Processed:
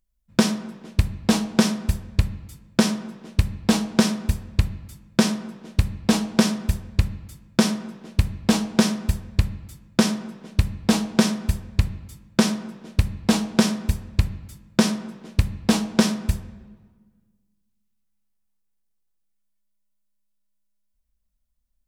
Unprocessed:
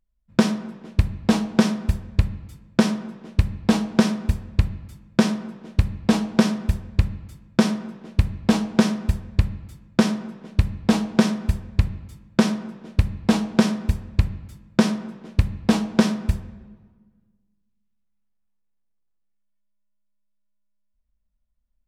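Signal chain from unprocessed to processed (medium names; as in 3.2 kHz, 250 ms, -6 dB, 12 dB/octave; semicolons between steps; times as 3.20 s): treble shelf 4.1 kHz +10 dB; trim -1 dB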